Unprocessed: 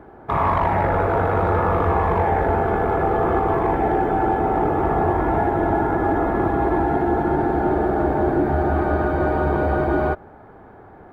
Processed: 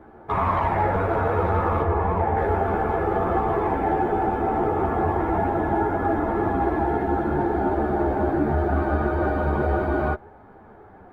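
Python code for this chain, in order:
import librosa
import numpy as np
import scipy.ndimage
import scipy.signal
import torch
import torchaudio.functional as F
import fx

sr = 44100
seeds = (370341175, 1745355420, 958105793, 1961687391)

y = fx.high_shelf(x, sr, hz=2500.0, db=-10.5, at=(1.82, 2.37))
y = fx.ensemble(y, sr)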